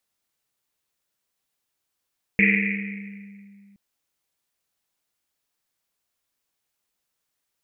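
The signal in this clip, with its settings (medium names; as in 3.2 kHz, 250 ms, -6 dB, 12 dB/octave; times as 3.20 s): Risset drum length 1.37 s, pitch 200 Hz, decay 2.68 s, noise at 2.2 kHz, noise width 620 Hz, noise 55%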